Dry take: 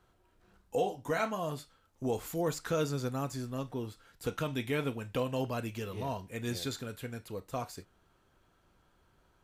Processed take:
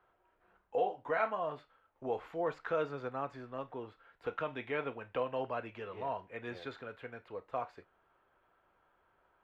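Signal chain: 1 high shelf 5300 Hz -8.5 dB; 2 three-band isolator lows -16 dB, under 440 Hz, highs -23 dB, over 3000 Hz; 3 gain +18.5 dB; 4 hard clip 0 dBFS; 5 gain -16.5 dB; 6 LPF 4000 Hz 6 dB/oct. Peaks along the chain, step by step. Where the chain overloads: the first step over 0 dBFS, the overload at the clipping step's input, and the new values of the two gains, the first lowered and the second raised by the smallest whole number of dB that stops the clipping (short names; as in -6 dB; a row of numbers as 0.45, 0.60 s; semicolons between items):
-19.0, -21.0, -2.5, -2.5, -19.0, -19.5 dBFS; no overload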